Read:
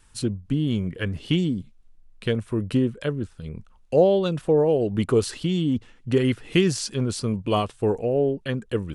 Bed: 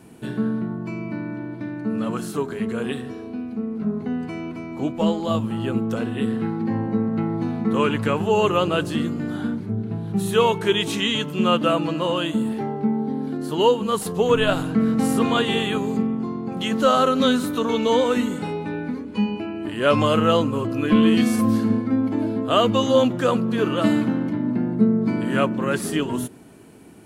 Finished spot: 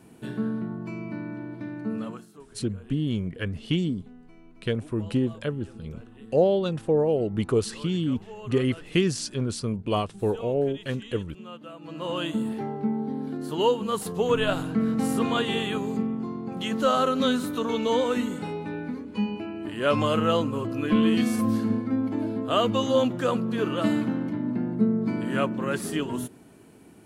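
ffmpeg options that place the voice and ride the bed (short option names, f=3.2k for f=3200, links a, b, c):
-filter_complex "[0:a]adelay=2400,volume=-3dB[a];[1:a]volume=13dB,afade=t=out:st=1.92:d=0.34:silence=0.125893,afade=t=in:st=11.8:d=0.43:silence=0.125893[b];[a][b]amix=inputs=2:normalize=0"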